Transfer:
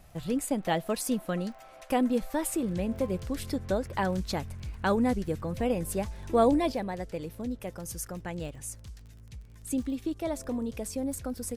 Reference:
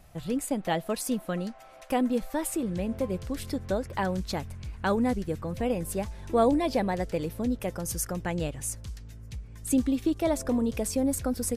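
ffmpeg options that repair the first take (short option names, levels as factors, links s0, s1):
-af "adeclick=t=4,asetnsamples=n=441:p=0,asendcmd='6.72 volume volume 6dB',volume=1"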